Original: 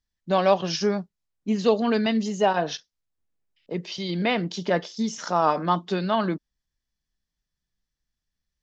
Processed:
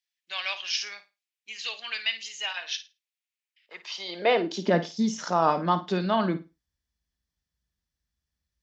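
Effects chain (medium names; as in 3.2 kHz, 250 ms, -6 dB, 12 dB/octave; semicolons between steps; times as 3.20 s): high-pass sweep 2.4 kHz -> 62 Hz, 3.46–5.36 s; on a send: flutter echo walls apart 9.3 m, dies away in 0.26 s; on the sum: trim -1.5 dB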